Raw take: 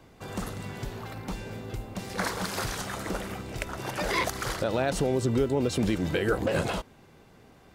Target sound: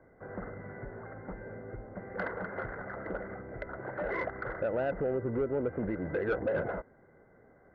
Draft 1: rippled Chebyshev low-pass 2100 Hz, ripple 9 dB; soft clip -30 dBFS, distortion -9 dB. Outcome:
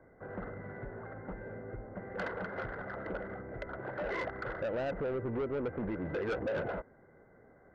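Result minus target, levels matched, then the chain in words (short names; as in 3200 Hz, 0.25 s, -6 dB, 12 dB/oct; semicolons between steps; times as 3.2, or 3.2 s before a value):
soft clip: distortion +9 dB
rippled Chebyshev low-pass 2100 Hz, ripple 9 dB; soft clip -22.5 dBFS, distortion -18 dB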